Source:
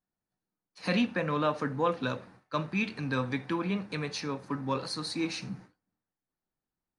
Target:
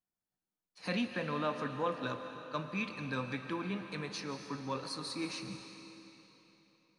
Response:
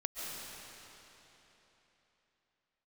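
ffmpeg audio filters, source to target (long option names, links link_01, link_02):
-filter_complex "[0:a]asplit=2[link_01][link_02];[link_02]highshelf=frequency=6200:gain=6[link_03];[1:a]atrim=start_sample=2205,lowshelf=frequency=240:gain=-8.5[link_04];[link_03][link_04]afir=irnorm=-1:irlink=0,volume=-5dB[link_05];[link_01][link_05]amix=inputs=2:normalize=0,volume=-9dB"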